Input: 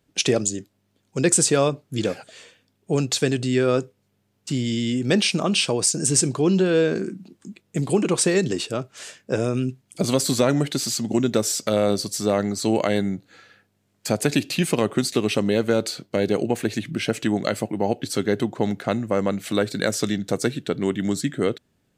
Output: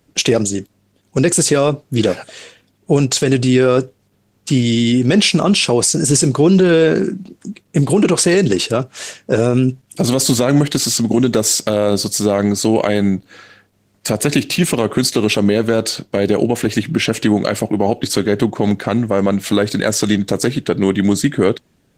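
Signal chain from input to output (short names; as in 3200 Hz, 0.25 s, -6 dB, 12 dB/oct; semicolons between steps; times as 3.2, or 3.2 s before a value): 19.9–21.03 de-esser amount 40%; maximiser +12.5 dB; gain -2 dB; Opus 16 kbps 48000 Hz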